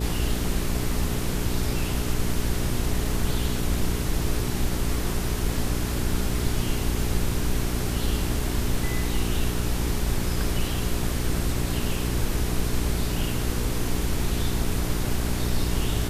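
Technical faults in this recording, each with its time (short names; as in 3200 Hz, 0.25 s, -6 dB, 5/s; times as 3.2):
hum 60 Hz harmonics 7 -29 dBFS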